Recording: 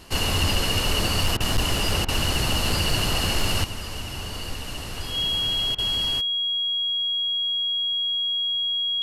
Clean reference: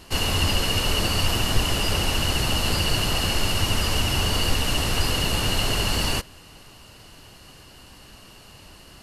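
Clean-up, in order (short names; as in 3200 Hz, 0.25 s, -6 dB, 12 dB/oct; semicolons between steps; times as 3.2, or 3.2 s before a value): clip repair -15 dBFS; notch 3300 Hz, Q 30; interpolate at 1.37/2.05/5.75, 32 ms; gain 0 dB, from 3.64 s +10 dB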